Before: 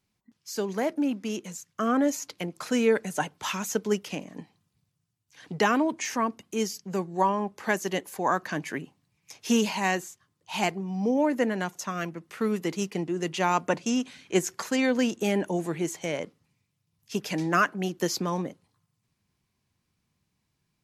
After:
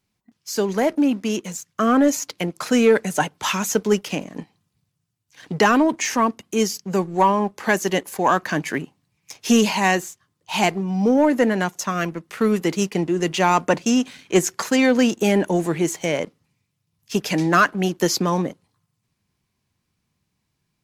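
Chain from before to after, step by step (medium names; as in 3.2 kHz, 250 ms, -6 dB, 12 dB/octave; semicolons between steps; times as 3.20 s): waveshaping leveller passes 1; trim +4.5 dB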